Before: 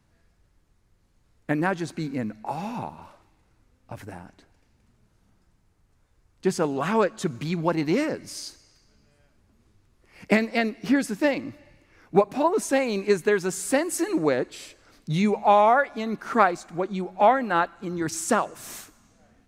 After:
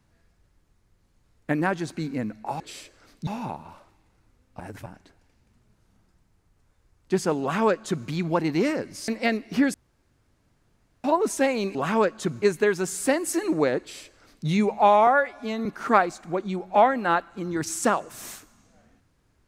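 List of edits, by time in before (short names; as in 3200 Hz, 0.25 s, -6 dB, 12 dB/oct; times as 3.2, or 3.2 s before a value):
3.93–4.19 reverse
6.74–7.41 copy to 13.07
8.41–10.4 cut
11.06–12.36 room tone
14.45–15.12 copy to 2.6
15.72–16.11 stretch 1.5×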